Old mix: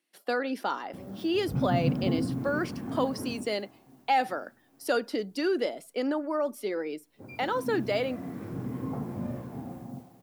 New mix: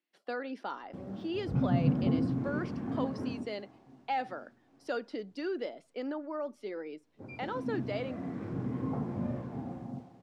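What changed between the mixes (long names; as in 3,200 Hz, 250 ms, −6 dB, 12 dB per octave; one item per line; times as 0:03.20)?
speech −7.5 dB
master: add high-frequency loss of the air 110 metres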